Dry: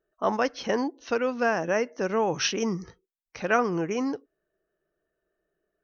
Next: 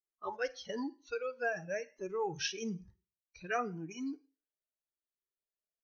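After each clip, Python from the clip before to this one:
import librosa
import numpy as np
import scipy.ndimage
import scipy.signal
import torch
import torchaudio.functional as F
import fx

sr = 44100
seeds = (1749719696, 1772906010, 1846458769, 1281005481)

y = fx.noise_reduce_blind(x, sr, reduce_db=20)
y = fx.rev_schroeder(y, sr, rt60_s=0.38, comb_ms=33, drr_db=17.5)
y = fx.comb_cascade(y, sr, direction='rising', hz=0.99)
y = y * 10.0 ** (-5.0 / 20.0)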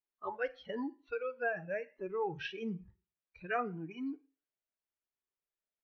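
y = scipy.signal.sosfilt(scipy.signal.butter(4, 2900.0, 'lowpass', fs=sr, output='sos'), x)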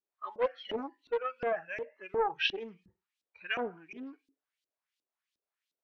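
y = fx.high_shelf(x, sr, hz=2200.0, db=10.5)
y = fx.filter_lfo_bandpass(y, sr, shape='saw_up', hz=2.8, low_hz=290.0, high_hz=4300.0, q=2.0)
y = fx.doppler_dist(y, sr, depth_ms=0.47)
y = y * 10.0 ** (8.5 / 20.0)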